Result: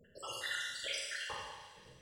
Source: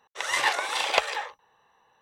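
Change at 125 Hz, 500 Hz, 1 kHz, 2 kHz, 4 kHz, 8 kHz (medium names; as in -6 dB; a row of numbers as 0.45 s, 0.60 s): no reading, -16.0 dB, -18.5 dB, -13.0 dB, -10.0 dB, -9.5 dB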